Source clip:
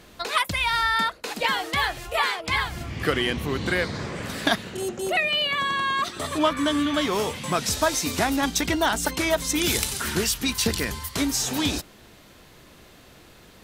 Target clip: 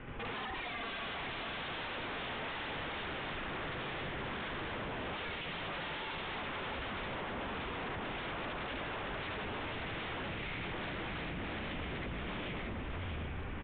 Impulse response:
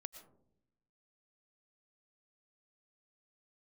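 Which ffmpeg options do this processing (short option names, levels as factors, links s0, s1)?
-filter_complex "[0:a]aecho=1:1:86|120|740|753:0.126|0.2|0.266|0.376,asplit=2[s0][s1];[1:a]atrim=start_sample=2205,asetrate=40572,aresample=44100,adelay=74[s2];[s1][s2]afir=irnorm=-1:irlink=0,volume=1.88[s3];[s0][s3]amix=inputs=2:normalize=0,acompressor=threshold=0.0398:ratio=6,bandreject=f=54.95:t=h:w=4,bandreject=f=109.9:t=h:w=4,bandreject=f=164.85:t=h:w=4,bandreject=f=219.8:t=h:w=4,bandreject=f=274.75:t=h:w=4,bandreject=f=329.7:t=h:w=4,bandreject=f=384.65:t=h:w=4,bandreject=f=439.6:t=h:w=4,bandreject=f=494.55:t=h:w=4,bandreject=f=549.5:t=h:w=4,bandreject=f=604.45:t=h:w=4,bandreject=f=659.4:t=h:w=4,bandreject=f=714.35:t=h:w=4,bandreject=f=769.3:t=h:w=4,bandreject=f=824.25:t=h:w=4,bandreject=f=879.2:t=h:w=4,bandreject=f=934.15:t=h:w=4,bandreject=f=989.1:t=h:w=4,bandreject=f=1044.05:t=h:w=4,bandreject=f=1099:t=h:w=4,bandreject=f=1153.95:t=h:w=4,bandreject=f=1208.9:t=h:w=4,bandreject=f=1263.85:t=h:w=4,bandreject=f=1318.8:t=h:w=4,bandreject=f=1373.75:t=h:w=4,bandreject=f=1428.7:t=h:w=4,bandreject=f=1483.65:t=h:w=4,bandreject=f=1538.6:t=h:w=4,bandreject=f=1593.55:t=h:w=4,bandreject=f=1648.5:t=h:w=4,bandreject=f=1703.45:t=h:w=4,bandreject=f=1758.4:t=h:w=4,bandreject=f=1813.35:t=h:w=4,bandreject=f=1868.3:t=h:w=4,bandreject=f=1923.25:t=h:w=4,bandreject=f=1978.2:t=h:w=4,highpass=f=160:t=q:w=0.5412,highpass=f=160:t=q:w=1.307,lowpass=f=2900:t=q:w=0.5176,lowpass=f=2900:t=q:w=0.7071,lowpass=f=2900:t=q:w=1.932,afreqshift=-220,alimiter=level_in=1.5:limit=0.0631:level=0:latency=1:release=459,volume=0.668,lowshelf=f=390:g=4,asplit=2[s4][s5];[s5]aecho=0:1:634:0.562[s6];[s4][s6]amix=inputs=2:normalize=0,aeval=exprs='0.0133*(abs(mod(val(0)/0.0133+3,4)-2)-1)':c=same,volume=1.33" -ar 8000 -c:a pcm_mulaw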